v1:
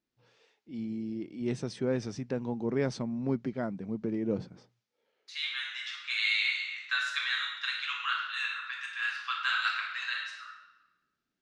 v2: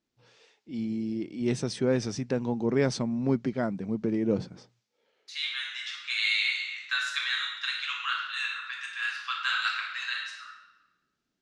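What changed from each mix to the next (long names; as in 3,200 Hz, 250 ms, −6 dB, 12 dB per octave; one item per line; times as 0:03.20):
first voice +4.5 dB
master: add high-shelf EQ 4,500 Hz +7 dB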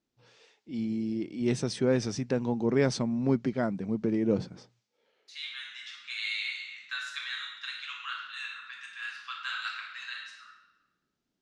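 second voice −7.0 dB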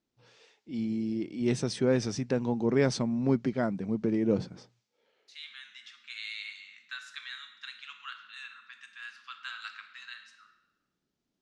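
second voice: send −11.0 dB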